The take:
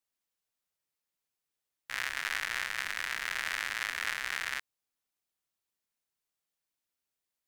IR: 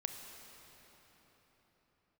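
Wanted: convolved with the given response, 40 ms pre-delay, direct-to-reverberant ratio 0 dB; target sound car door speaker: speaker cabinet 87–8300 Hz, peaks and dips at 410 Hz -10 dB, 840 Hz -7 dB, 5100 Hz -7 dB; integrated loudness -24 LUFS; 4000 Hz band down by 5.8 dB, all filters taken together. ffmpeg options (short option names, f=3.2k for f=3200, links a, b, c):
-filter_complex "[0:a]equalizer=f=4k:t=o:g=-6.5,asplit=2[a][b];[1:a]atrim=start_sample=2205,adelay=40[c];[b][c]afir=irnorm=-1:irlink=0,volume=0.5dB[d];[a][d]amix=inputs=2:normalize=0,highpass=87,equalizer=f=410:t=q:w=4:g=-10,equalizer=f=840:t=q:w=4:g=-7,equalizer=f=5.1k:t=q:w=4:g=-7,lowpass=f=8.3k:w=0.5412,lowpass=f=8.3k:w=1.3066,volume=9dB"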